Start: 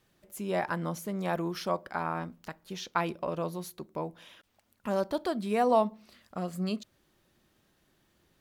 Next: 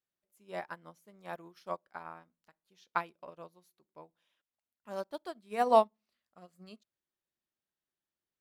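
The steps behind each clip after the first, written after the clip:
low-shelf EQ 350 Hz −8.5 dB
expander for the loud parts 2.5 to 1, over −42 dBFS
level +4.5 dB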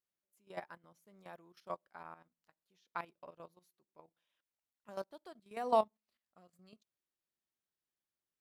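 output level in coarse steps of 12 dB
level −1.5 dB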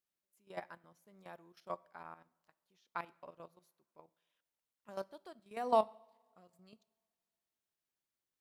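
coupled-rooms reverb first 0.66 s, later 2.3 s, from −18 dB, DRR 20 dB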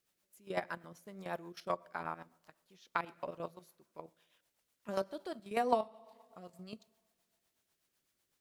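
downward compressor 3 to 1, threshold −43 dBFS, peak gain reduction 14.5 dB
rotating-speaker cabinet horn 8 Hz
level +14 dB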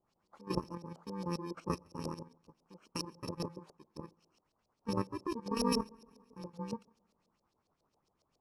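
samples in bit-reversed order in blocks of 64 samples
auto-filter low-pass saw up 7.3 Hz 490–4,600 Hz
flat-topped bell 2,400 Hz −13.5 dB
level +10 dB

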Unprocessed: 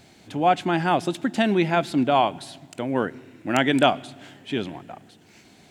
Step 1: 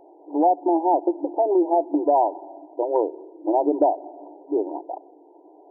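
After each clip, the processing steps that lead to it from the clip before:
brick-wall band-pass 290–1,000 Hz
downward compressor 3 to 1, threshold −25 dBFS, peak gain reduction 8 dB
level +8 dB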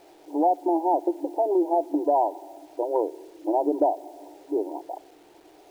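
bit reduction 9 bits
level −3 dB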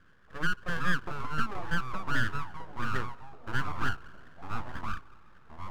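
resonant band-pass 870 Hz, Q 3
full-wave rectification
delay with pitch and tempo change per echo 293 ms, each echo −3 semitones, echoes 3, each echo −6 dB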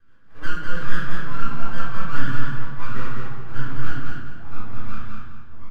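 rotating-speaker cabinet horn 6 Hz, later 1 Hz, at 0:02.62
repeating echo 202 ms, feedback 31%, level −3.5 dB
rectangular room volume 340 cubic metres, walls mixed, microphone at 3.7 metres
level −7 dB

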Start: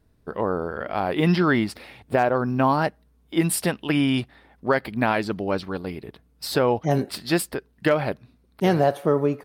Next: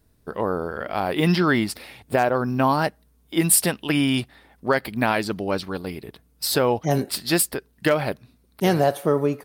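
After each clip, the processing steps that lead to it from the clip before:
high-shelf EQ 5,100 Hz +11.5 dB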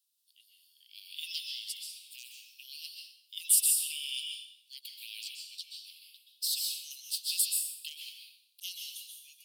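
Butterworth high-pass 2,800 Hz 72 dB per octave
dense smooth reverb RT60 0.65 s, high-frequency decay 1×, pre-delay 115 ms, DRR 1 dB
level −6.5 dB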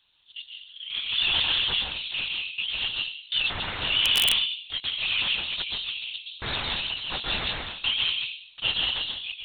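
mid-hump overdrive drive 37 dB, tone 3,100 Hz, clips at −7.5 dBFS
linear-prediction vocoder at 8 kHz whisper
wrap-around overflow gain 9.5 dB
level −2.5 dB

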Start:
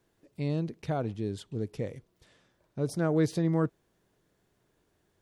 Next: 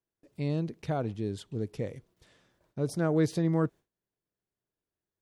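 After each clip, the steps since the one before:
noise gate with hold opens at −59 dBFS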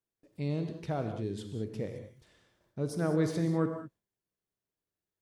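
reverb whose tail is shaped and stops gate 230 ms flat, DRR 5.5 dB
level −3 dB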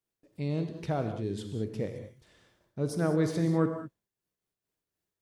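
amplitude modulation by smooth noise, depth 60%
level +5 dB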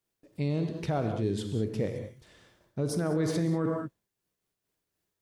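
brickwall limiter −24.5 dBFS, peak gain reduction 10 dB
level +4.5 dB

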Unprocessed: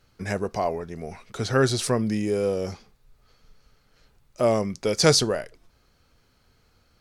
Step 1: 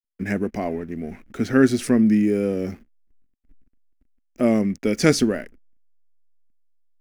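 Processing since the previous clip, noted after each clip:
slack as between gear wheels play −43 dBFS
octave-band graphic EQ 125/250/500/1,000/2,000/4,000/8,000 Hz −9/+12/−5/−11/+6/−11/−6 dB
level +3.5 dB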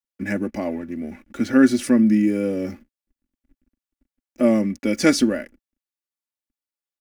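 high-pass filter 69 Hz 6 dB per octave
comb filter 3.5 ms, depth 68%
level −1 dB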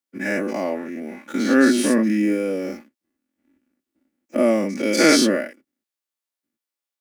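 every bin's largest magnitude spread in time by 120 ms
high-pass filter 270 Hz 12 dB per octave
level −1 dB

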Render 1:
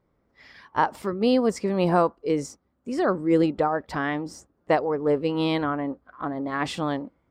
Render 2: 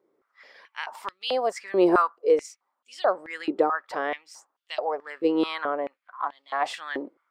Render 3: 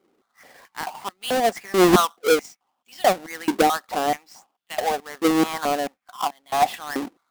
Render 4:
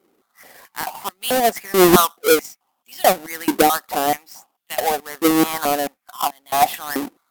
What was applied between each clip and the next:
high-pass on a step sequencer 4.6 Hz 370–3,200 Hz; level −3.5 dB
each half-wave held at its own peak; hollow resonant body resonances 210/740 Hz, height 10 dB, ringing for 25 ms; level −2.5 dB
parametric band 14,000 Hz +11.5 dB 0.89 octaves; level +3 dB

